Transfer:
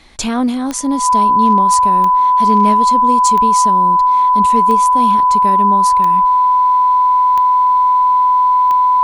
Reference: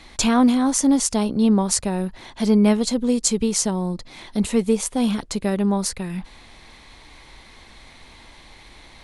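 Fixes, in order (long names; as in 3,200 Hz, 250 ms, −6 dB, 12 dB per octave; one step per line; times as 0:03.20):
clipped peaks rebuilt −3.5 dBFS
click removal
notch filter 1,000 Hz, Q 30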